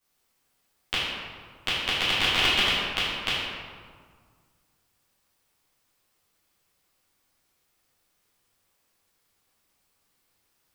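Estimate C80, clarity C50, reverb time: 0.5 dB, −2.0 dB, 1.8 s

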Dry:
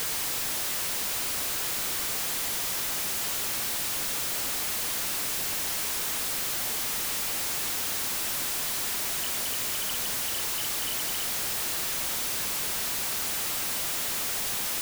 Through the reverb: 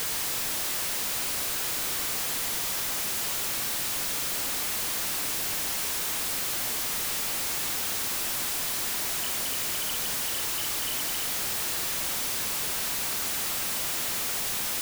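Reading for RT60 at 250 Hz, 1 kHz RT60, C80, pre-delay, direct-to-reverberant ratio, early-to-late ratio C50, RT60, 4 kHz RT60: 1.7 s, 1.4 s, 12.5 dB, 27 ms, 10.0 dB, 11.0 dB, 1.5 s, 0.95 s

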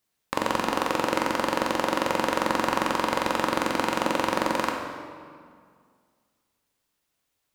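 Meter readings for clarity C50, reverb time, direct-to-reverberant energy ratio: 3.5 dB, 2.0 s, 1.5 dB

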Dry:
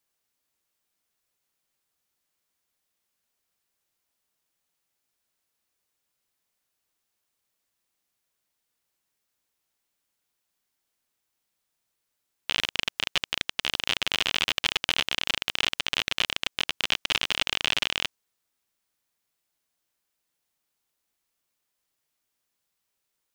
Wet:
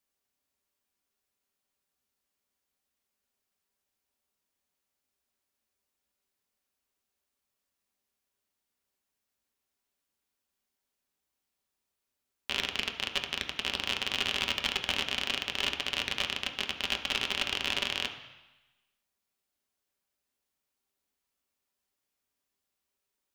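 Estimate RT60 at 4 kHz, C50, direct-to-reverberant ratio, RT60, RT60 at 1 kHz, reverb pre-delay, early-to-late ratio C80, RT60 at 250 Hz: 1.1 s, 9.0 dB, 2.5 dB, 1.1 s, 1.1 s, 3 ms, 11.0 dB, 1.0 s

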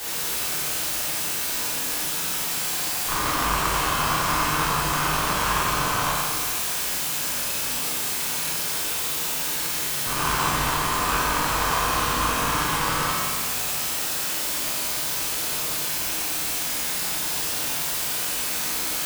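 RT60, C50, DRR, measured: 1.8 s, −2.0 dB, −9.0 dB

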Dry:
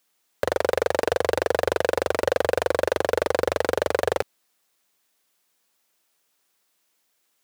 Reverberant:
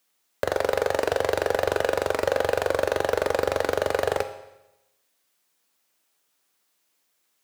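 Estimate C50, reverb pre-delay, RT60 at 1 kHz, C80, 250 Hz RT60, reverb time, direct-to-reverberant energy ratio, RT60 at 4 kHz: 11.5 dB, 7 ms, 0.95 s, 13.5 dB, 0.95 s, 0.95 s, 8.0 dB, 0.90 s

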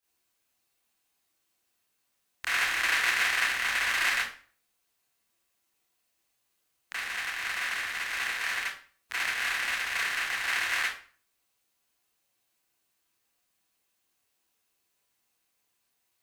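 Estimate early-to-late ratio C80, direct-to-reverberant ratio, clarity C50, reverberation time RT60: 9.0 dB, −11.0 dB, 4.0 dB, 0.40 s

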